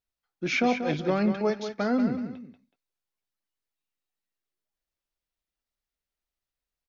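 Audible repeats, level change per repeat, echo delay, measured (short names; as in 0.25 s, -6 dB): 2, -10.5 dB, 0.187 s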